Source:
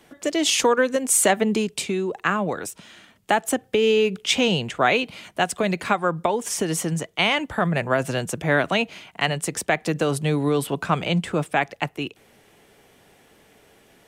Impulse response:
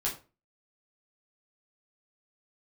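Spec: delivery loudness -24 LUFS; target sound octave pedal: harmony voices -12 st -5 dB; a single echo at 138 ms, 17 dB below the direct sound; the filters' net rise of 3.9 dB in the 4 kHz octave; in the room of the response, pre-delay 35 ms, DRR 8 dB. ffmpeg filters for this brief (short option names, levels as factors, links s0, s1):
-filter_complex "[0:a]equalizer=f=4000:t=o:g=5.5,aecho=1:1:138:0.141,asplit=2[s0][s1];[1:a]atrim=start_sample=2205,adelay=35[s2];[s1][s2]afir=irnorm=-1:irlink=0,volume=0.224[s3];[s0][s3]amix=inputs=2:normalize=0,asplit=2[s4][s5];[s5]asetrate=22050,aresample=44100,atempo=2,volume=0.562[s6];[s4][s6]amix=inputs=2:normalize=0,volume=0.631"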